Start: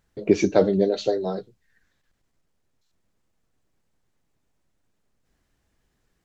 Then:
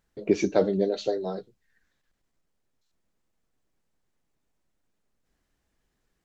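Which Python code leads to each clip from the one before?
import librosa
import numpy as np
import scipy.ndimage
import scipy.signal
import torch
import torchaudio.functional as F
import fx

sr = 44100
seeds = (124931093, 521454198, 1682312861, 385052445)

y = fx.peak_eq(x, sr, hz=99.0, db=-5.0, octaves=0.95)
y = y * 10.0 ** (-4.0 / 20.0)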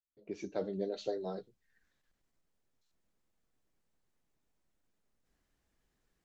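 y = fx.fade_in_head(x, sr, length_s=2.08)
y = y * 10.0 ** (-3.5 / 20.0)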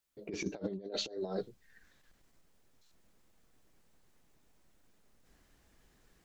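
y = fx.over_compress(x, sr, threshold_db=-43.0, ratio=-0.5)
y = y * 10.0 ** (6.0 / 20.0)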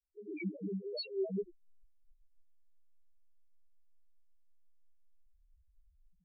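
y = fx.spec_topn(x, sr, count=1)
y = y * 10.0 ** (9.0 / 20.0)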